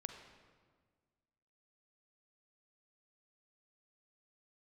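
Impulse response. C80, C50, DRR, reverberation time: 7.5 dB, 6.0 dB, 5.5 dB, 1.6 s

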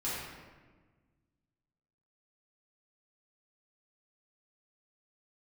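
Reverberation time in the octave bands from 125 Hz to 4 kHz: 2.2 s, 2.0 s, 1.5 s, 1.3 s, 1.2 s, 0.90 s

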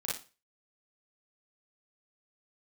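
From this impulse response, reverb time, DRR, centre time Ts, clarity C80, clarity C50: no single decay rate, -6.0 dB, 43 ms, 11.5 dB, 2.0 dB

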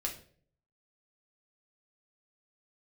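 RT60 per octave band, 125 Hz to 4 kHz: 0.85 s, 0.65 s, 0.60 s, 0.40 s, 0.40 s, 0.40 s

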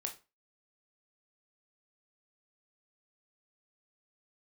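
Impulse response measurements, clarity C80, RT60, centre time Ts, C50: 19.5 dB, 0.30 s, 12 ms, 12.5 dB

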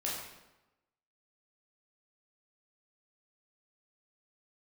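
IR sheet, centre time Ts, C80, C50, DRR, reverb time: 62 ms, 4.0 dB, 1.5 dB, -5.5 dB, 1.0 s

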